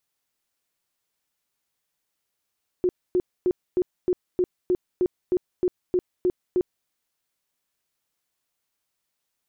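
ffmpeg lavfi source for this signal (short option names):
-f lavfi -i "aevalsrc='0.133*sin(2*PI*362*mod(t,0.31))*lt(mod(t,0.31),18/362)':d=4.03:s=44100"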